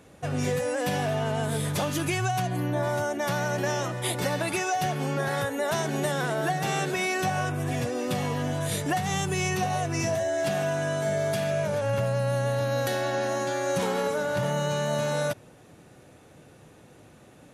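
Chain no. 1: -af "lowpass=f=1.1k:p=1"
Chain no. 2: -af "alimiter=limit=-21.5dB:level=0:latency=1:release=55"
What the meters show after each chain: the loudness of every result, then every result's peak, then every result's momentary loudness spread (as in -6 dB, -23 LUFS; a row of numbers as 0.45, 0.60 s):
-29.0, -30.0 LUFS; -17.0, -21.5 dBFS; 2, 2 LU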